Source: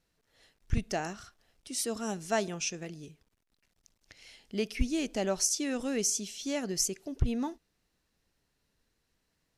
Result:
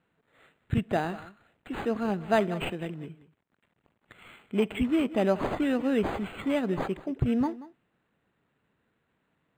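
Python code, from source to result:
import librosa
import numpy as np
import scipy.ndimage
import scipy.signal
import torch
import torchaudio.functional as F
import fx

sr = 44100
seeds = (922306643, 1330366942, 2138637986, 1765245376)

y = scipy.signal.sosfilt(scipy.signal.cheby1(2, 1.0, [130.0, 4000.0], 'bandpass', fs=sr, output='sos'), x)
y = y + 10.0 ** (-17.5 / 20.0) * np.pad(y, (int(184 * sr / 1000.0), 0))[:len(y)]
y = np.interp(np.arange(len(y)), np.arange(len(y))[::8], y[::8])
y = F.gain(torch.from_numpy(y), 7.0).numpy()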